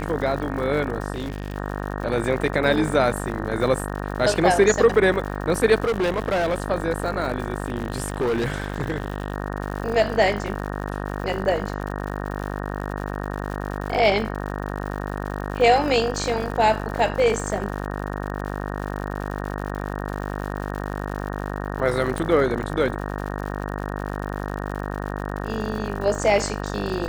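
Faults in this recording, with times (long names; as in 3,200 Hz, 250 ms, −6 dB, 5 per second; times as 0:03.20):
mains buzz 50 Hz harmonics 37 −29 dBFS
surface crackle 120 per second −31 dBFS
0:01.12–0:01.56: clipping −24 dBFS
0:05.84–0:06.62: clipping −18.5 dBFS
0:07.66–0:09.34: clipping −19 dBFS
0:22.18: click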